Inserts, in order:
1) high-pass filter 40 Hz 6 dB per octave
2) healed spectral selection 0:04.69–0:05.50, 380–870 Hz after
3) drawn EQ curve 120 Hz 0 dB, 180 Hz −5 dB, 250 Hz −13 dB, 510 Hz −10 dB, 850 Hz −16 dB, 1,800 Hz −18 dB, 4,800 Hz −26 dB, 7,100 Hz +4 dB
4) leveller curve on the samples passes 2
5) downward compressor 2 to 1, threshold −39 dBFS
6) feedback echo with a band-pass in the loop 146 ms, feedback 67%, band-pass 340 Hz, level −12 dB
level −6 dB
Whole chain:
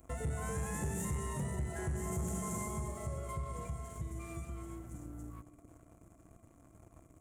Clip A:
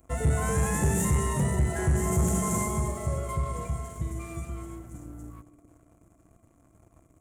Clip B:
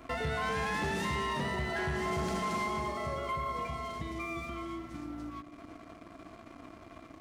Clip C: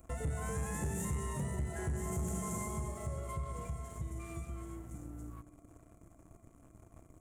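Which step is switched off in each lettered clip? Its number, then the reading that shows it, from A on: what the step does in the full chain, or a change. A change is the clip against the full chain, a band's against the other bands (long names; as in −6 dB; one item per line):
5, average gain reduction 8.5 dB
3, 8 kHz band −14.5 dB
1, change in momentary loudness spread +3 LU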